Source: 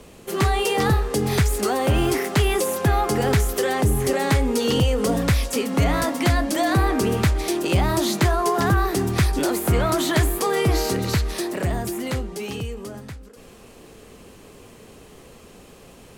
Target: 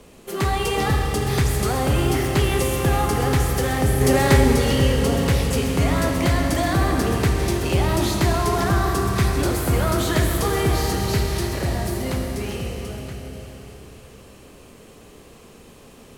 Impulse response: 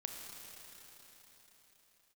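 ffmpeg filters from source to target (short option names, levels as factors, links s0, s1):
-filter_complex "[0:a]asettb=1/sr,asplit=3[s0][s1][s2];[s0]atrim=end=4.014[s3];[s1]atrim=start=4.01:end=4.53,asetpts=PTS-STARTPTS,afade=t=in:d=0.004:c=qsin,afade=t=out:st=0.516:d=0.004:c=qsin,acontrast=47[s4];[s2]atrim=start=4.526[s5];[s3][s4]acrossfade=d=0.004:c1=hsin:c2=qsin[s6];[s6][s5]acrossfade=d=0.004:c1=qsin:c2=hsin[s7];[1:a]atrim=start_sample=2205[s8];[s7][s8]afir=irnorm=-1:irlink=0,volume=1.12"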